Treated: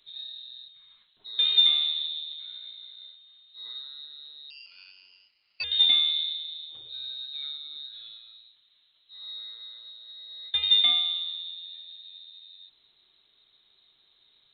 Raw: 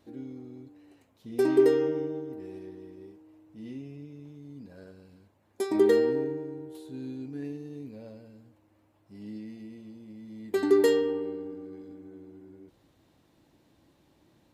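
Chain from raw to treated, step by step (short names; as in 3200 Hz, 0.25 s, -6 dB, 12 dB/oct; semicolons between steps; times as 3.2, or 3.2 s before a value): inverted band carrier 4000 Hz; 4.5–5.64 ring modulator 1000 Hz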